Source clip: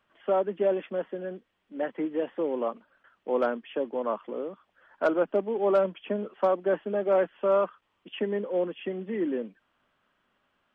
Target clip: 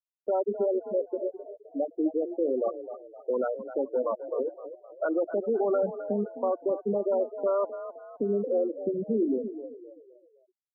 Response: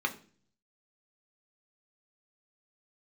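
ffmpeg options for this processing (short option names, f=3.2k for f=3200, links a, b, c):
-filter_complex "[0:a]lowpass=3.1k,bandreject=f=60:t=h:w=6,bandreject=f=120:t=h:w=6,bandreject=f=180:t=h:w=6,bandreject=f=240:t=h:w=6,bandreject=f=300:t=h:w=6,bandreject=f=360:t=h:w=6,bandreject=f=420:t=h:w=6,afwtdn=0.0224,afftfilt=real='re*gte(hypot(re,im),0.112)':imag='im*gte(hypot(re,im),0.112)':win_size=1024:overlap=0.75,adynamicequalizer=threshold=0.00224:dfrequency=1700:dqfactor=4.2:tfrequency=1700:tqfactor=4.2:attack=5:release=100:ratio=0.375:range=3:mode=boostabove:tftype=bell,alimiter=level_in=2dB:limit=-24dB:level=0:latency=1:release=128,volume=-2dB,asplit=5[a][b][c][d][e];[b]adelay=259,afreqshift=37,volume=-12dB[f];[c]adelay=518,afreqshift=74,volume=-20dB[g];[d]adelay=777,afreqshift=111,volume=-27.9dB[h];[e]adelay=1036,afreqshift=148,volume=-35.9dB[i];[a][f][g][h][i]amix=inputs=5:normalize=0,volume=6.5dB"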